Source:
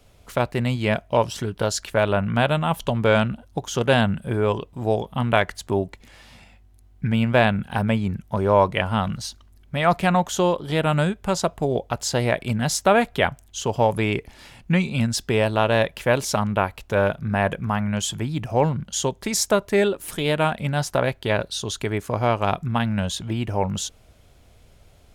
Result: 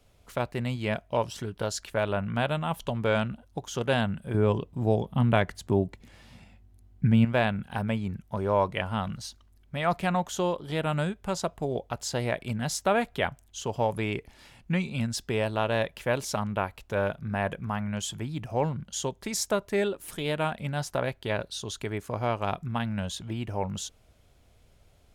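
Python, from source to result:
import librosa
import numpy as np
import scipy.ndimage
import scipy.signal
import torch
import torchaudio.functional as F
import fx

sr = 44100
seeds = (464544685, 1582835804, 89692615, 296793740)

y = fx.peak_eq(x, sr, hz=150.0, db=9.0, octaves=2.8, at=(4.34, 7.25))
y = F.gain(torch.from_numpy(y), -7.5).numpy()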